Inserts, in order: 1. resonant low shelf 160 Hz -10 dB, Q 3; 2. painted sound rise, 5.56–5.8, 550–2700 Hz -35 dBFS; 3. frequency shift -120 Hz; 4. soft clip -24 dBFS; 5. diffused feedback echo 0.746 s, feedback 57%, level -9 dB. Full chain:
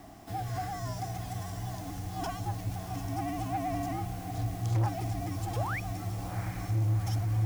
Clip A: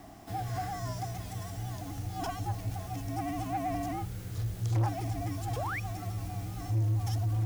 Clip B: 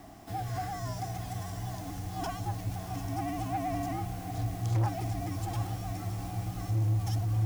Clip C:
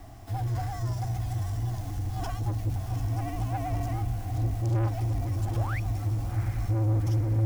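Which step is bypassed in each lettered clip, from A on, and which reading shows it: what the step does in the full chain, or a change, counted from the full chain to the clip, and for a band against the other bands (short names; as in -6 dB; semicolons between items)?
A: 5, echo-to-direct -7.5 dB to none; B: 2, 2 kHz band -3.5 dB; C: 1, 125 Hz band +7.0 dB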